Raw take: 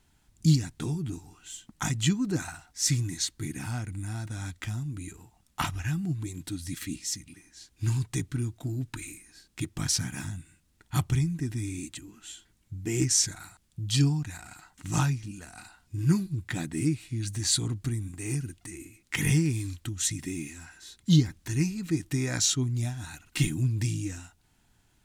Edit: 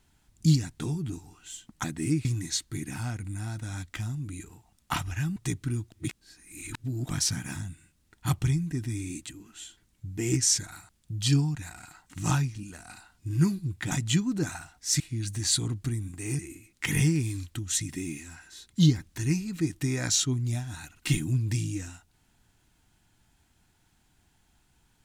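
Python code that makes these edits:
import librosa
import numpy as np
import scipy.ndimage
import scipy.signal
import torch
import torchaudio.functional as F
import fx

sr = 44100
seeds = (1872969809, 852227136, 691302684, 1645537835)

y = fx.edit(x, sr, fx.swap(start_s=1.84, length_s=1.09, other_s=16.59, other_length_s=0.41),
    fx.cut(start_s=6.04, length_s=2.0),
    fx.reverse_span(start_s=8.6, length_s=1.17),
    fx.cut(start_s=18.39, length_s=0.3), tone=tone)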